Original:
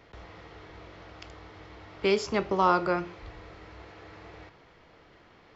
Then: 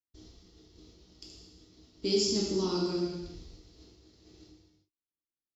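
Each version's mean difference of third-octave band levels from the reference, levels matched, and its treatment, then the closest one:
9.5 dB: noise gate −46 dBFS, range −48 dB
drawn EQ curve 180 Hz 0 dB, 300 Hz +6 dB, 580 Hz −16 dB, 1,300 Hz −20 dB, 2,100 Hz −19 dB, 4,800 Hz +9 dB
reverb whose tail is shaped and stops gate 420 ms falling, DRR −4 dB
level −5 dB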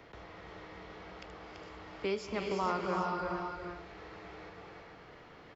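6.5 dB: single-tap delay 335 ms −5.5 dB
reverb whose tail is shaped and stops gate 480 ms rising, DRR 3.5 dB
multiband upward and downward compressor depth 40%
level −8.5 dB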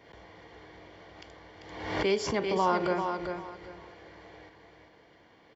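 3.0 dB: notch comb filter 1,300 Hz
on a send: repeating echo 393 ms, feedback 25%, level −6 dB
on the sum: background raised ahead of every attack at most 56 dB per second
level −2.5 dB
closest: third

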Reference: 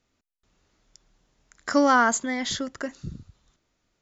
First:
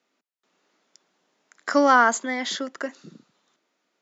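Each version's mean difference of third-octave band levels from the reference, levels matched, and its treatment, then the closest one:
2.5 dB: Bessel high-pass filter 330 Hz, order 8
high-shelf EQ 5,900 Hz −9.5 dB
level +3.5 dB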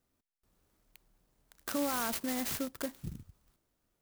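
12.5 dB: brickwall limiter −19.5 dBFS, peak gain reduction 11.5 dB
converter with an unsteady clock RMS 0.11 ms
level −5.5 dB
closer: first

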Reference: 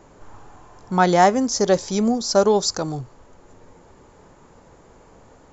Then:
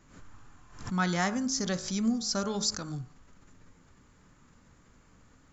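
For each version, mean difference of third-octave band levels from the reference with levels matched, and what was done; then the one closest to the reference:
4.5 dB: flat-topped bell 580 Hz −11.5 dB
hum removal 53.09 Hz, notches 33
background raised ahead of every attack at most 100 dB per second
level −7 dB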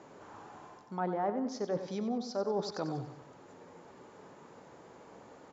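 8.5 dB: treble cut that deepens with the level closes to 1,300 Hz, closed at −13.5 dBFS
reversed playback
downward compressor 5 to 1, threshold −29 dBFS, peak gain reduction 16.5 dB
reversed playback
band-pass filter 170–5,800 Hz
repeating echo 94 ms, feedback 47%, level −10.5 dB
level −3 dB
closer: first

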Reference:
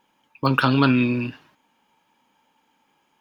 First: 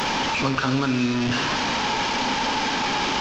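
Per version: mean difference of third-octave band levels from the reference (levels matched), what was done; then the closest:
10.0 dB: linear delta modulator 32 kbit/s, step −18 dBFS
downward compressor 3 to 1, threshold −21 dBFS, peak gain reduction 7 dB
dense smooth reverb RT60 1.2 s, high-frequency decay 1×, DRR 7 dB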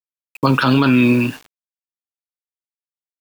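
4.0 dB: high-pass filter 110 Hz 12 dB per octave
bit reduction 8 bits
boost into a limiter +13.5 dB
level −4 dB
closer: second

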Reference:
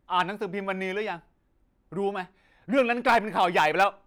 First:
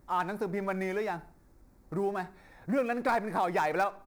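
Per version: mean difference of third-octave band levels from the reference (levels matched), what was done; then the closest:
4.5 dB: mu-law and A-law mismatch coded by mu
parametric band 3,000 Hz −13.5 dB 0.65 octaves
downward compressor 2 to 1, threshold −30 dBFS, peak gain reduction 7.5 dB
on a send: repeating echo 68 ms, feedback 41%, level −23.5 dB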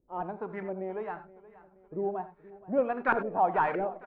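8.0 dB: variable-slope delta modulation 64 kbit/s
auto-filter low-pass saw up 1.6 Hz 400–1,700 Hz
on a send: repeating echo 474 ms, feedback 52%, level −19 dB
on the sum: reverb whose tail is shaped and stops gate 110 ms rising, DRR 11.5 dB
level −7.5 dB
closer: first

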